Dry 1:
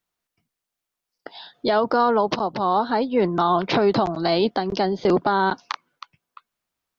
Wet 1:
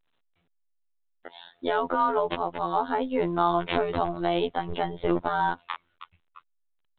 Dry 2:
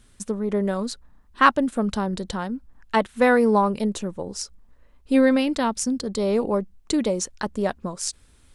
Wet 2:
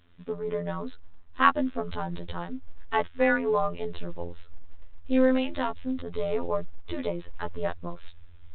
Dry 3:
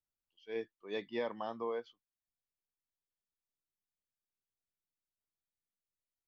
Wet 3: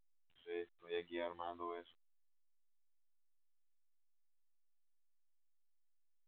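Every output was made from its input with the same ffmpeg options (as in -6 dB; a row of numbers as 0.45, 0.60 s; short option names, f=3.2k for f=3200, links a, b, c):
-af "afftfilt=real='hypot(re,im)*cos(PI*b)':imag='0':win_size=2048:overlap=0.75,asubboost=boost=11.5:cutoff=57,volume=-1dB" -ar 8000 -c:a pcm_alaw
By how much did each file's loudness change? -6.0, -6.0, -6.0 LU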